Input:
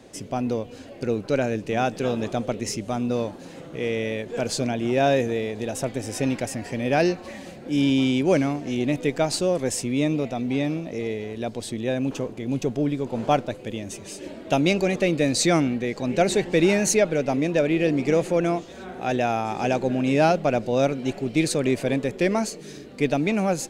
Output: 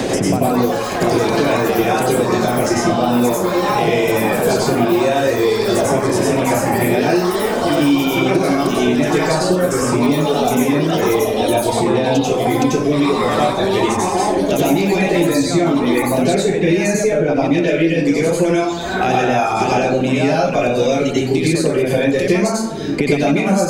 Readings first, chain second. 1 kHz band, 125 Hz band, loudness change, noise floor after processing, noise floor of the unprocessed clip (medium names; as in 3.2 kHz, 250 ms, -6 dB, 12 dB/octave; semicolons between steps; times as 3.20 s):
+10.5 dB, +7.5 dB, +8.5 dB, -20 dBFS, -42 dBFS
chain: reverb removal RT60 1.6 s; peak limiter -17.5 dBFS, peak gain reduction 9.5 dB; compression, threshold -27 dBFS, peak gain reduction 6 dB; ever faster or slower copies 237 ms, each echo +7 st, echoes 3, each echo -6 dB; plate-style reverb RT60 0.66 s, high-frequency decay 0.5×, pre-delay 80 ms, DRR -8.5 dB; three bands compressed up and down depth 100%; trim +5 dB